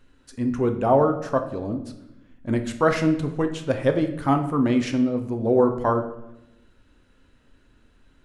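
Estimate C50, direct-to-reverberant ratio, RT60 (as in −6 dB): 10.0 dB, 5.5 dB, 0.90 s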